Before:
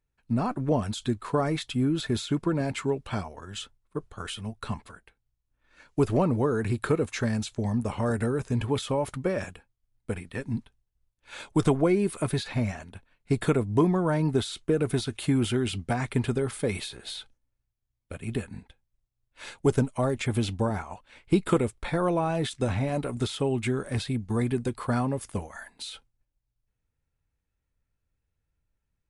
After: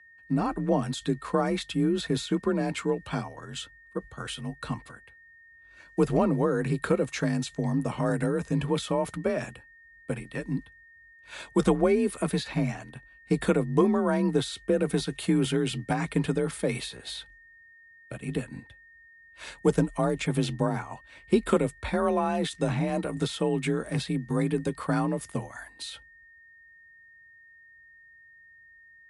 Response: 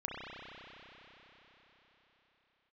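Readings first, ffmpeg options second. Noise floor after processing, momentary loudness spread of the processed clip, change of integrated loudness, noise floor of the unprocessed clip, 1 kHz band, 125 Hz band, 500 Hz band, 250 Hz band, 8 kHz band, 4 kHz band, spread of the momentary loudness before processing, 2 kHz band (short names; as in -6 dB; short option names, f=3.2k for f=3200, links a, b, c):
-55 dBFS, 14 LU, 0.0 dB, -81 dBFS, +0.5 dB, -2.0 dB, +1.0 dB, +0.5 dB, 0.0 dB, 0.0 dB, 14 LU, +1.0 dB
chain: -af "aeval=exprs='val(0)+0.00251*sin(2*PI*1800*n/s)':c=same,afreqshift=36"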